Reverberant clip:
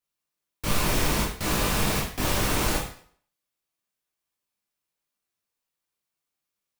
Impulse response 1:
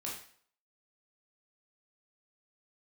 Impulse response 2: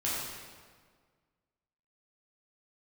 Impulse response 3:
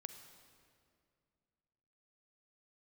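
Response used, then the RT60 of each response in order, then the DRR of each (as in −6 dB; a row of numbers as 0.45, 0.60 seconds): 1; 0.55, 1.7, 2.3 seconds; −5.0, −8.0, 8.0 decibels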